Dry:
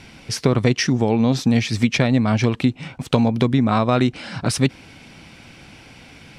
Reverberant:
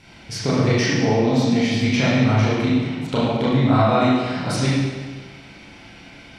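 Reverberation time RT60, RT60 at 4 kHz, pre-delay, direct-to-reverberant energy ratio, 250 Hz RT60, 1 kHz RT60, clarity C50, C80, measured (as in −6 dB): 1.5 s, 1.3 s, 29 ms, −9.0 dB, 1.5 s, 1.5 s, −2.0 dB, 0.5 dB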